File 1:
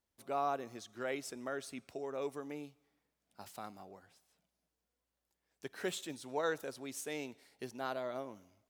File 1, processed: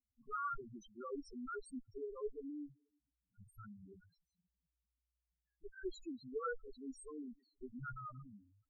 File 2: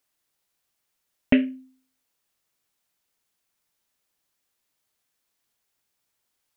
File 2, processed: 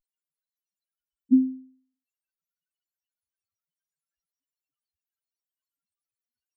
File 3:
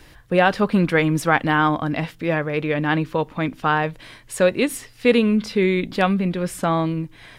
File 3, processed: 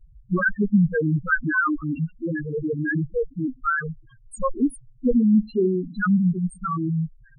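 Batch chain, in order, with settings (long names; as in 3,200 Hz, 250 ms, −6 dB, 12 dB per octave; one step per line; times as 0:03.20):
lower of the sound and its delayed copy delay 0.7 ms
spectral peaks only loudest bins 2
level +4.5 dB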